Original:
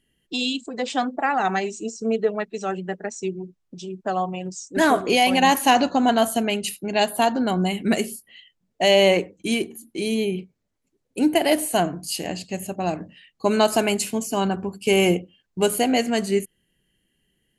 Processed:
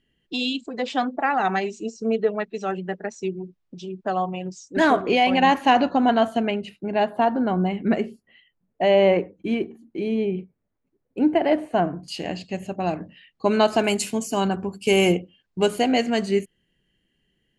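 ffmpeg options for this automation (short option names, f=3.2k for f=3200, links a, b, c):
-af "asetnsamples=n=441:p=0,asendcmd='4.96 lowpass f 2800;6.51 lowpass f 1700;12.08 lowpass f 4000;13.84 lowpass f 9300;15.12 lowpass f 5300',lowpass=4.5k"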